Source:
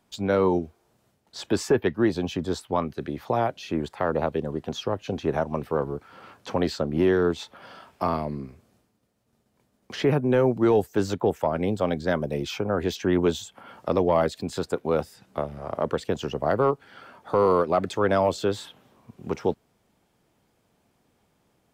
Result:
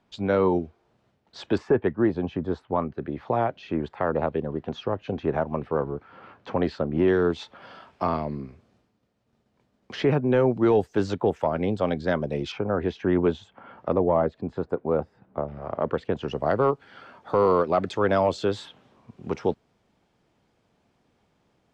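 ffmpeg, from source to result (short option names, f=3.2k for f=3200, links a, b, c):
-af "asetnsamples=n=441:p=0,asendcmd='1.58 lowpass f 1700;3.12 lowpass f 2600;7.08 lowpass f 4700;12.52 lowpass f 2100;13.93 lowpass f 1200;15.48 lowpass f 2400;16.28 lowpass f 5600',lowpass=3.8k"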